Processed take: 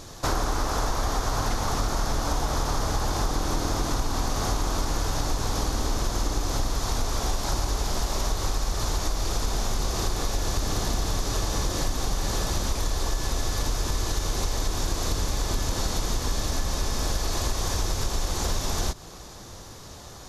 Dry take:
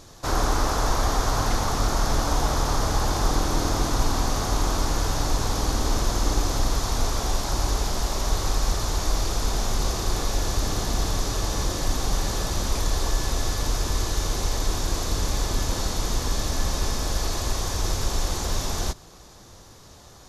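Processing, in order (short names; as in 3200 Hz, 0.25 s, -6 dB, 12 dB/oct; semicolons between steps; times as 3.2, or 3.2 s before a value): compressor, threshold -27 dBFS, peak gain reduction 11 dB; gain +5 dB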